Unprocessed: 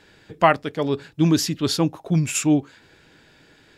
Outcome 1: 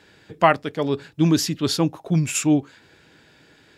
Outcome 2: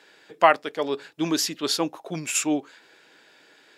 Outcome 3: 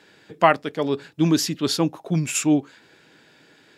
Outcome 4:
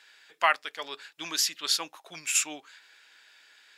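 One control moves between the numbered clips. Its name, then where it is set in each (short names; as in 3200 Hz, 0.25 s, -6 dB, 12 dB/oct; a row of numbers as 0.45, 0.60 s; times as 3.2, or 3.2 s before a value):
HPF, cutoff: 57, 410, 160, 1400 Hz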